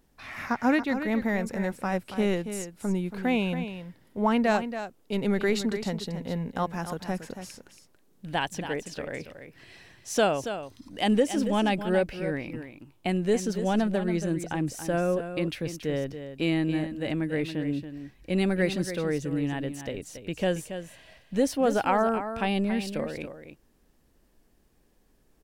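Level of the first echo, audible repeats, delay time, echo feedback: -10.0 dB, 1, 0.279 s, no steady repeat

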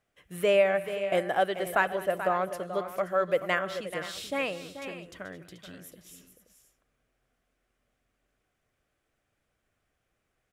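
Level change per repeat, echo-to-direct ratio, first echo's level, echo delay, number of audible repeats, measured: no steady repeat, -9.0 dB, -19.0 dB, 0.204 s, 3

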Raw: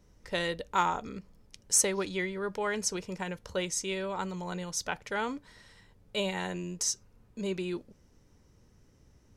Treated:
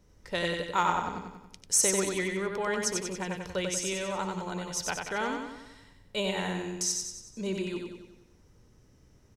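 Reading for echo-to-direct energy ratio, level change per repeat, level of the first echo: -2.5 dB, -5.5 dB, -4.0 dB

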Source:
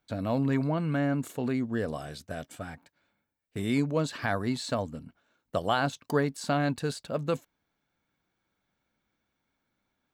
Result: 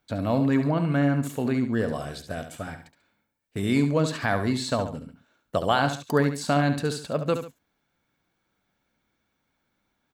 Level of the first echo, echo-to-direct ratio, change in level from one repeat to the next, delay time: -9.0 dB, -8.5 dB, -9.0 dB, 70 ms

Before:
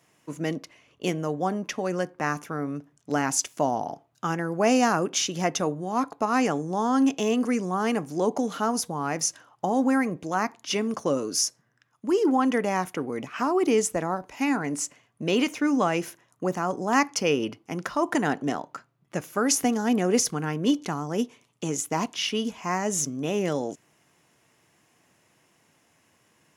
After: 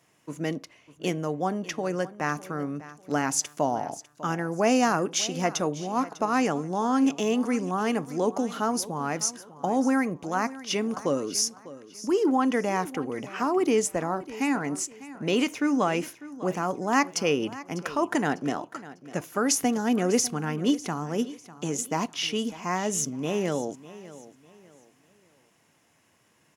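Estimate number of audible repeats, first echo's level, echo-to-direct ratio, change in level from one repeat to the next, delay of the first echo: 2, -17.0 dB, -16.5 dB, -10.0 dB, 0.599 s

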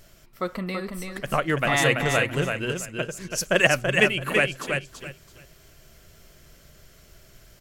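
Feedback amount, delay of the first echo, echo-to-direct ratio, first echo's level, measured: 21%, 0.332 s, -5.0 dB, -5.0 dB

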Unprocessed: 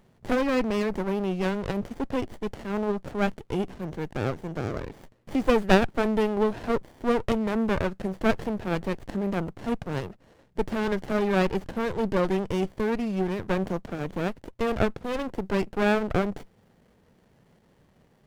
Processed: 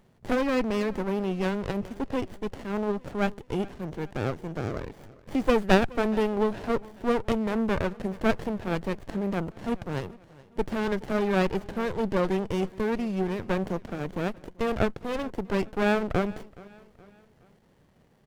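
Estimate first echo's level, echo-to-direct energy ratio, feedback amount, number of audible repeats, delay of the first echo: -21.5 dB, -20.5 dB, 46%, 3, 0.421 s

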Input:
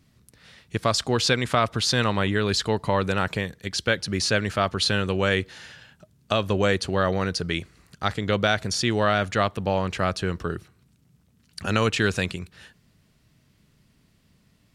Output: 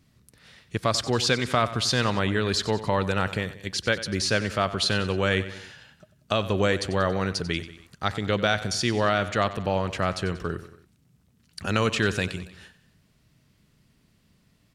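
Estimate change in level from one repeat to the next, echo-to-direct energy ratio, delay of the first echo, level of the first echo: -5.5 dB, -13.0 dB, 93 ms, -14.5 dB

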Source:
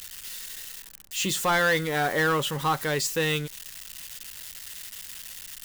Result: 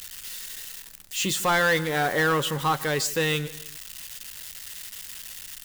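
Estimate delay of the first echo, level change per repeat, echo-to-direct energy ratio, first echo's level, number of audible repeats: 0.151 s, -4.5 dB, -17.5 dB, -19.0 dB, 2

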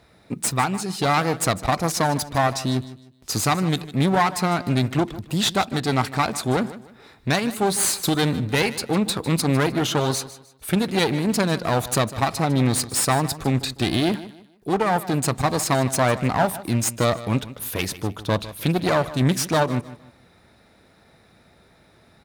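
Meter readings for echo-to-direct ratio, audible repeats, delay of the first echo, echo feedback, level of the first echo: -15.5 dB, 2, 0.153 s, 30%, -16.0 dB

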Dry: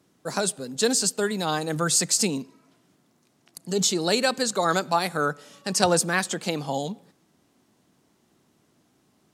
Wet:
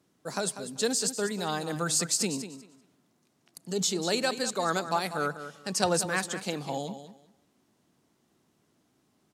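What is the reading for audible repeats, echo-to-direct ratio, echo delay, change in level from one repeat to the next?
2, -11.5 dB, 0.194 s, -14.0 dB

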